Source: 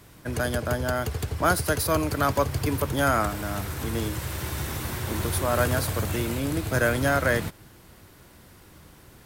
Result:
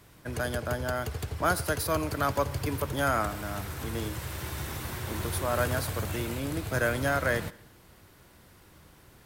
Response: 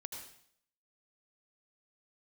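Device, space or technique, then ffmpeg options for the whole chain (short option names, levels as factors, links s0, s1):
filtered reverb send: -filter_complex "[0:a]asplit=2[s0][s1];[s1]highpass=f=230:w=0.5412,highpass=f=230:w=1.3066,lowpass=5600[s2];[1:a]atrim=start_sample=2205[s3];[s2][s3]afir=irnorm=-1:irlink=0,volume=0.266[s4];[s0][s4]amix=inputs=2:normalize=0,volume=0.562"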